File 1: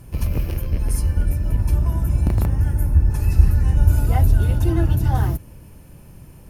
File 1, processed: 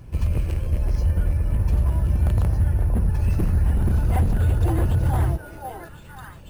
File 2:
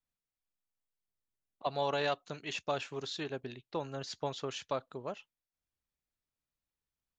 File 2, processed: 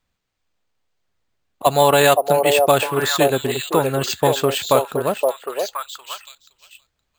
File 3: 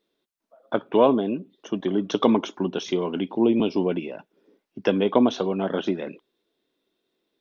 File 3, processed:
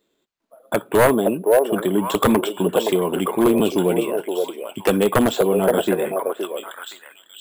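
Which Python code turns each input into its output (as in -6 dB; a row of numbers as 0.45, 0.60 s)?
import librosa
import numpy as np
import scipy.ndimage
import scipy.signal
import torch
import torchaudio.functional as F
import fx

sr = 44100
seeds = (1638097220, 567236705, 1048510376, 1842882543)

p1 = x + fx.echo_stepped(x, sr, ms=519, hz=560.0, octaves=1.4, feedback_pct=70, wet_db=-1.0, dry=0)
p2 = 10.0 ** (-12.5 / 20.0) * (np.abs((p1 / 10.0 ** (-12.5 / 20.0) + 3.0) % 4.0 - 2.0) - 1.0)
p3 = fx.peak_eq(p2, sr, hz=79.0, db=3.5, octaves=0.77)
p4 = np.repeat(scipy.signal.resample_poly(p3, 1, 4), 4)[:len(p3)]
p5 = 10.0 ** (-21.0 / 20.0) * np.tanh(p4 / 10.0 ** (-21.0 / 20.0))
p6 = p4 + (p5 * librosa.db_to_amplitude(-11.5))
p7 = fx.wow_flutter(p6, sr, seeds[0], rate_hz=2.1, depth_cents=23.0)
p8 = fx.dynamic_eq(p7, sr, hz=260.0, q=3.5, threshold_db=-38.0, ratio=4.0, max_db=-6)
y = p8 * 10.0 ** (-20 / 20.0) / np.sqrt(np.mean(np.square(p8)))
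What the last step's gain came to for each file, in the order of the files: -3.0, +17.0, +4.5 dB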